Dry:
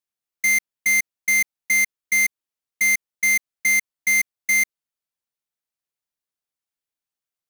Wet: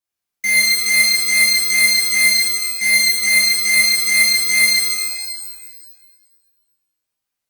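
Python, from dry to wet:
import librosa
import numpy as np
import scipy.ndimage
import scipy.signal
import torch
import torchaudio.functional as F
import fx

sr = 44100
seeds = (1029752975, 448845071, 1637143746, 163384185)

y = fx.rev_shimmer(x, sr, seeds[0], rt60_s=1.5, semitones=12, shimmer_db=-2, drr_db=-8.5)
y = F.gain(torch.from_numpy(y), -2.0).numpy()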